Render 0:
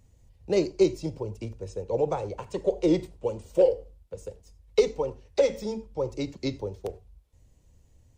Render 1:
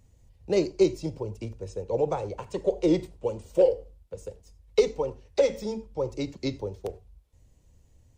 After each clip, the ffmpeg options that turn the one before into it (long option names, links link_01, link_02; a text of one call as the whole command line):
ffmpeg -i in.wav -af anull out.wav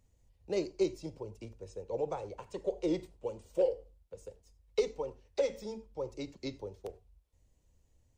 ffmpeg -i in.wav -af "equalizer=frequency=120:width=0.65:gain=-4.5,volume=-8dB" out.wav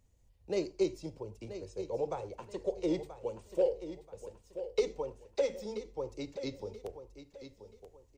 ffmpeg -i in.wav -af "aecho=1:1:981|1962|2943:0.266|0.0825|0.0256" out.wav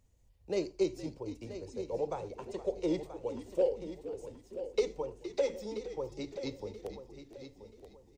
ffmpeg -i in.wav -filter_complex "[0:a]asplit=5[link_01][link_02][link_03][link_04][link_05];[link_02]adelay=466,afreqshift=-70,volume=-13dB[link_06];[link_03]adelay=932,afreqshift=-140,volume=-21.2dB[link_07];[link_04]adelay=1398,afreqshift=-210,volume=-29.4dB[link_08];[link_05]adelay=1864,afreqshift=-280,volume=-37.5dB[link_09];[link_01][link_06][link_07][link_08][link_09]amix=inputs=5:normalize=0" out.wav